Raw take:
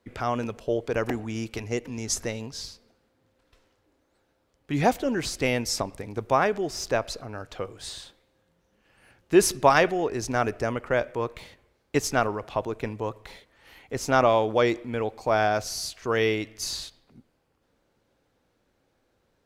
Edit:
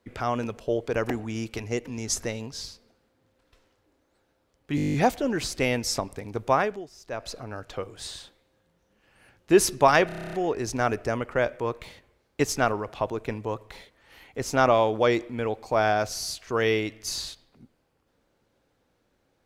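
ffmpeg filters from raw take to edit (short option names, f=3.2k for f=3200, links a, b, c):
-filter_complex "[0:a]asplit=21[a][b][c][d][e][f][g][h][i][j][k][l][m][n][o][p][q][r][s][t][u];[a]atrim=end=4.782[v];[b]atrim=start=4.758:end=4.782[w];[c]atrim=start=4.758:end=4.782[x];[d]atrim=start=4.758:end=4.782[y];[e]atrim=start=4.758:end=4.782[z];[f]atrim=start=4.758:end=4.782[aa];[g]atrim=start=4.758:end=4.782[ab];[h]atrim=start=4.758:end=4.782[ac];[i]atrim=start=4.758:end=4.782[ad];[j]atrim=start=4.758:end=6.71,asetpts=PTS-STARTPTS,afade=t=out:st=1.612:d=0.34:silence=0.141254[ae];[k]atrim=start=6.71:end=6.87,asetpts=PTS-STARTPTS,volume=-17dB[af];[l]atrim=start=6.87:end=9.912,asetpts=PTS-STARTPTS,afade=t=in:d=0.34:silence=0.141254[ag];[m]atrim=start=9.878:end=9.912[ah];[n]atrim=start=9.878:end=9.912[ai];[o]atrim=start=9.878:end=9.912[aj];[p]atrim=start=9.878:end=9.912[ak];[q]atrim=start=9.878:end=9.912[al];[r]atrim=start=9.878:end=9.912[am];[s]atrim=start=9.878:end=9.912[an];[t]atrim=start=9.878:end=9.912[ao];[u]atrim=start=9.878[ap];[v][w]acrossfade=d=0.004:c1=hsin:c2=hsin[aq];[aq][x]acrossfade=d=0.004:c1=hsin:c2=hsin[ar];[ar][y]acrossfade=d=0.004:c1=hsin:c2=hsin[as];[as][z]acrossfade=d=0.004:c1=hsin:c2=hsin[at];[at][aa]acrossfade=d=0.004:c1=hsin:c2=hsin[au];[au][ab]acrossfade=d=0.004:c1=hsin:c2=hsin[av];[av][ac]acrossfade=d=0.004:c1=hsin:c2=hsin[aw];[aw][ad]acrossfade=d=0.004:c1=hsin:c2=hsin[ax];[ae][af][ag]concat=n=3:v=0:a=1[ay];[ax][ay]acrossfade=d=0.004:c1=hsin:c2=hsin[az];[az][ah]acrossfade=d=0.004:c1=hsin:c2=hsin[ba];[ba][ai]acrossfade=d=0.004:c1=hsin:c2=hsin[bb];[bb][aj]acrossfade=d=0.004:c1=hsin:c2=hsin[bc];[bc][ak]acrossfade=d=0.004:c1=hsin:c2=hsin[bd];[bd][al]acrossfade=d=0.004:c1=hsin:c2=hsin[be];[be][am]acrossfade=d=0.004:c1=hsin:c2=hsin[bf];[bf][an]acrossfade=d=0.004:c1=hsin:c2=hsin[bg];[bg][ao]acrossfade=d=0.004:c1=hsin:c2=hsin[bh];[bh][ap]acrossfade=d=0.004:c1=hsin:c2=hsin"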